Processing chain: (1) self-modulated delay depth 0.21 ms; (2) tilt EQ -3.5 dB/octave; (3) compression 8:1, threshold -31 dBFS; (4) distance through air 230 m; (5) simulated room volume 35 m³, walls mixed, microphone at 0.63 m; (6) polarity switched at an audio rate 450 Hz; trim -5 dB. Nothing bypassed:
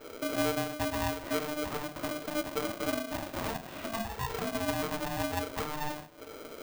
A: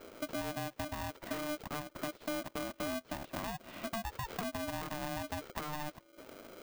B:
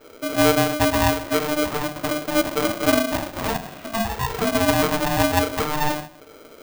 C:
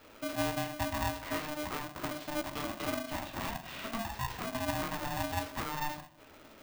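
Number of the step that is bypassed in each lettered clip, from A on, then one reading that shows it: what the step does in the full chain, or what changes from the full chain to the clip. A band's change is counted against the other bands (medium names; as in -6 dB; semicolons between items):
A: 5, momentary loudness spread change -2 LU; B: 3, mean gain reduction 9.5 dB; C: 2, momentary loudness spread change -1 LU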